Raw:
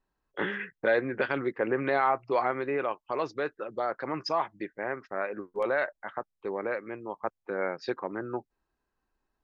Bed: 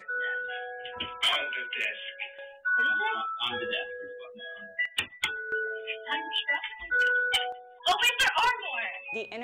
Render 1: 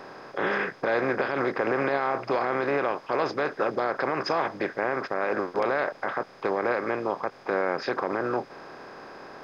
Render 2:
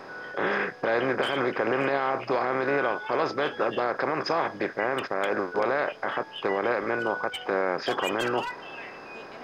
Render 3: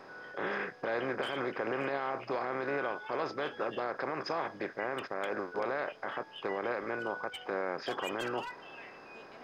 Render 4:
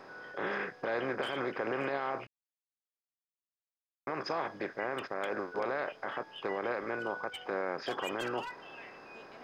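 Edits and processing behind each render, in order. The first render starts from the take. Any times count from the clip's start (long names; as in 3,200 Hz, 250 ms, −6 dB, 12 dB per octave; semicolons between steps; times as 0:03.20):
compressor on every frequency bin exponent 0.4; brickwall limiter −15 dBFS, peak gain reduction 10 dB
mix in bed −9.5 dB
level −8.5 dB
0:02.27–0:04.07: silence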